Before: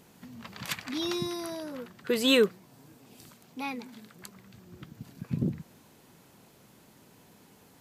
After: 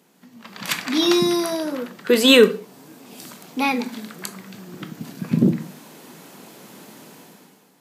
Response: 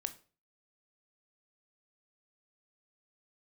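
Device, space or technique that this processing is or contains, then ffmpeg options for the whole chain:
far laptop microphone: -filter_complex "[1:a]atrim=start_sample=2205[s0];[0:a][s0]afir=irnorm=-1:irlink=0,highpass=f=170:w=0.5412,highpass=f=170:w=1.3066,dynaudnorm=f=100:g=13:m=6.31"

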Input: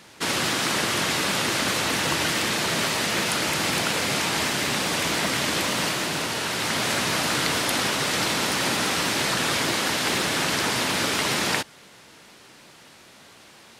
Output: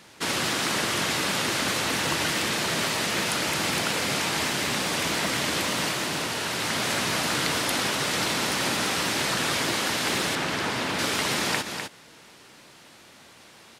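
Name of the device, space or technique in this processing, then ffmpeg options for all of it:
ducked delay: -filter_complex "[0:a]asplit=3[s0][s1][s2];[s1]adelay=252,volume=0.447[s3];[s2]apad=whole_len=619665[s4];[s3][s4]sidechaincompress=threshold=0.0282:ratio=8:attack=16:release=107[s5];[s0][s5]amix=inputs=2:normalize=0,asettb=1/sr,asplit=3[s6][s7][s8];[s6]atrim=end=10.354[s9];[s7]atrim=start=10.35:end=10.99,asetpts=PTS-STARTPTS,afade=t=in:d=0.004:c=qsin,afade=t=out:st=0.636:d=0.004:c=qsin,highshelf=f=4900:g=-10[s10];[s8]atrim=start=10.986[s11];[s9][s10]acrossfade=d=0.004:c1=hsin:c2=qsin[s12];[s12][s11]acrossfade=d=0.004:c1=qsin:c2=hsin,volume=0.794"

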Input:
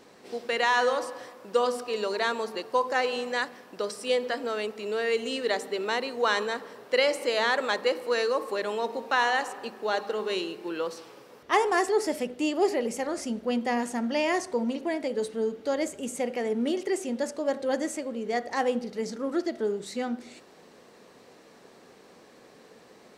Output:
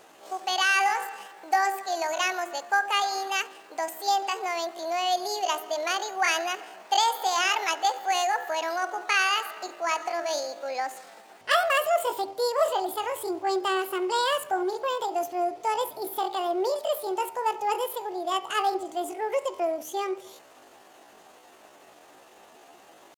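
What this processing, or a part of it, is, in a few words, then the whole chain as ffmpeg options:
chipmunk voice: -af "asetrate=70004,aresample=44100,atempo=0.629961,volume=1.12"

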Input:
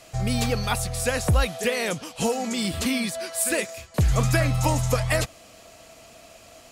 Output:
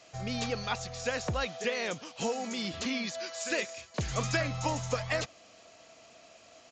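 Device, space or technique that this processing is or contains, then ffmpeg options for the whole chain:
Bluetooth headset: -filter_complex "[0:a]asettb=1/sr,asplit=3[s0][s1][s2];[s0]atrim=end=3.074[s3];[s1]atrim=start=3.07:end=4.42,asetpts=PTS-STARTPTS,afade=t=in:d=0.004:c=qsin,afade=t=out:st=1.346:d=0.004:c=qsin,highshelf=f=2100:g=4[s4];[s2]atrim=start=4.416[s5];[s3][s4]acrossfade=d=0.004:c1=hsin:c2=qsin[s6];[s6][s5]acrossfade=d=0.004:c1=qsin:c2=hsin,highpass=f=220:p=1,aresample=16000,aresample=44100,volume=0.473" -ar 16000 -c:a sbc -b:a 64k

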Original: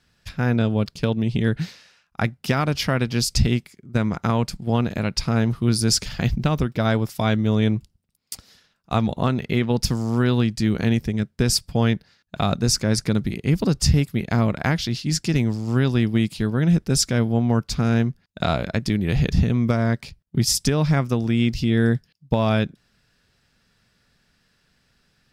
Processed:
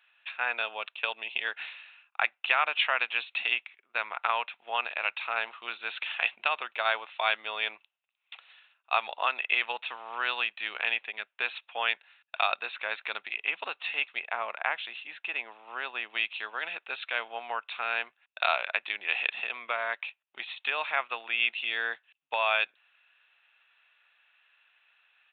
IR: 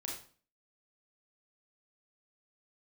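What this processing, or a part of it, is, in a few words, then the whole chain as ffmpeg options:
musical greeting card: -filter_complex "[0:a]aresample=8000,aresample=44100,highpass=f=790:w=0.5412,highpass=f=790:w=1.3066,equalizer=f=2600:t=o:w=0.23:g=11.5,asettb=1/sr,asplit=3[s0][s1][s2];[s0]atrim=end=14.194[s3];[s1]atrim=start=14.19:end=16.1,asetpts=PTS-STARTPTS,afade=t=in:d=0.004:c=qsin,afade=t=out:st=1.906:d=0.004:c=qsin,highshelf=f=2200:g=-10.5[s4];[s2]atrim=start=16.096[s5];[s3][s4]acrossfade=d=0.004:c1=hsin:c2=qsin[s6];[s6][s5]acrossfade=d=0.004:c1=qsin:c2=hsin"

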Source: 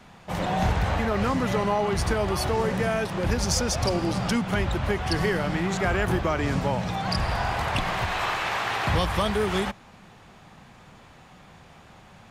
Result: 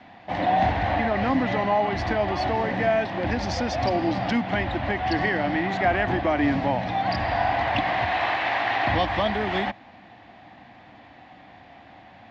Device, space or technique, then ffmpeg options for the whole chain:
guitar cabinet: -af "highpass=82,equalizer=f=160:t=q:w=4:g=-9,equalizer=f=290:t=q:w=4:g=10,equalizer=f=420:t=q:w=4:g=-7,equalizer=f=720:t=q:w=4:g=10,equalizer=f=1300:t=q:w=4:g=-6,equalizer=f=1900:t=q:w=4:g=7,lowpass=f=4300:w=0.5412,lowpass=f=4300:w=1.3066"

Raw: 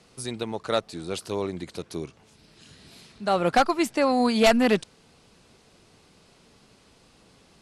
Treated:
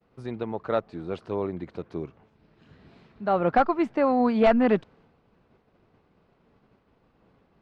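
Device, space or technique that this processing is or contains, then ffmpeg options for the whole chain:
hearing-loss simulation: -af "lowpass=1600,agate=range=0.0224:threshold=0.00224:ratio=3:detection=peak"

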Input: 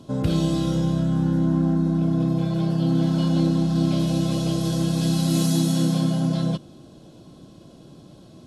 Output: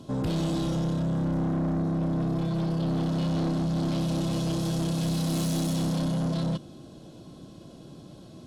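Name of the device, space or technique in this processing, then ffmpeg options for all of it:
saturation between pre-emphasis and de-emphasis: -af "highshelf=f=5400:g=7,asoftclip=type=tanh:threshold=0.0631,highshelf=f=5400:g=-7"

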